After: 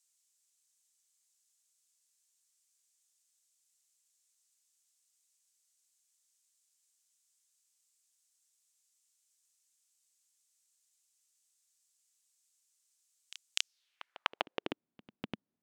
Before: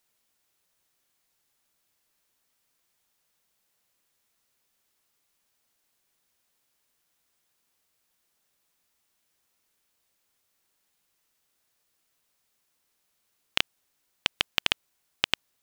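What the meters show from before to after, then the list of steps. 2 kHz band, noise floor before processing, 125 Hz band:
-11.5 dB, -75 dBFS, no reading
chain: band-pass sweep 7.4 kHz -> 220 Hz, 13.58–14.83 s; reverse echo 248 ms -17 dB; trim +6 dB

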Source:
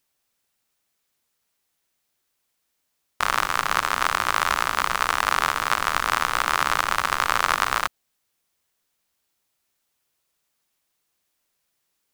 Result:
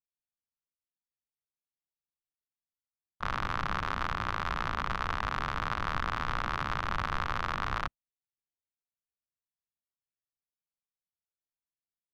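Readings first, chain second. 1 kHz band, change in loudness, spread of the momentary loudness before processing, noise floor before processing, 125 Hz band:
-10.5 dB, -11.0 dB, 2 LU, -75 dBFS, +3.5 dB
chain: local Wiener filter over 9 samples; expander -17 dBFS; tone controls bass +12 dB, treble +12 dB; peak limiter -11 dBFS, peak gain reduction 13.5 dB; distance through air 310 m; trim +3 dB

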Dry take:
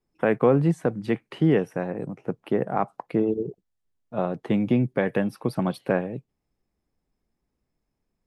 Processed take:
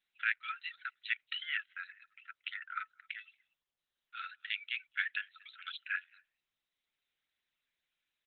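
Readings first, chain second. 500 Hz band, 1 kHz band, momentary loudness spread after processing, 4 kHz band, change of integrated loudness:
under -40 dB, -15.0 dB, 13 LU, +4.5 dB, -14.0 dB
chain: reverb removal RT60 0.86 s; Chebyshev high-pass 1.3 kHz, order 10; differentiator; in parallel at -2 dB: compression 4:1, threshold -56 dBFS, peak gain reduction 14 dB; on the sum: echo from a far wall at 40 m, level -26 dB; trim +13.5 dB; Opus 8 kbps 48 kHz

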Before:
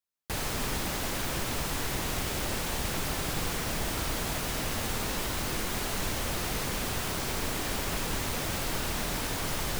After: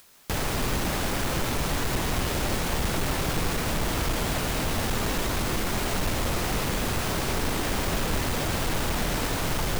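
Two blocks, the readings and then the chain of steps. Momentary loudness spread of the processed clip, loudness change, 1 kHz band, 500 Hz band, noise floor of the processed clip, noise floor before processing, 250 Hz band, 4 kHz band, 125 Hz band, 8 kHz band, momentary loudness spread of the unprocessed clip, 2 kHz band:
0 LU, +4.0 dB, +5.0 dB, +6.0 dB, -29 dBFS, -33 dBFS, +6.0 dB, +3.0 dB, +6.5 dB, +1.5 dB, 0 LU, +4.0 dB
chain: square wave that keeps the level; upward compressor, threshold -29 dBFS

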